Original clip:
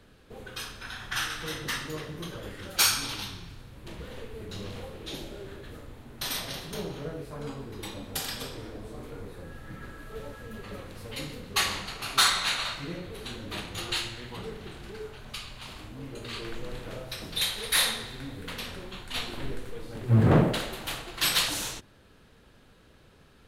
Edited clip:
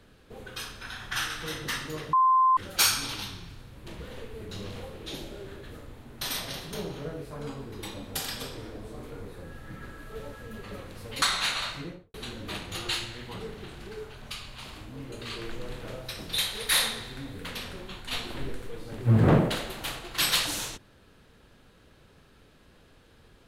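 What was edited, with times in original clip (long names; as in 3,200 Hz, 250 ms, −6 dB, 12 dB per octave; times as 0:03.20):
0:02.13–0:02.57: beep over 1,040 Hz −17.5 dBFS
0:11.22–0:12.25: remove
0:12.78–0:13.17: fade out and dull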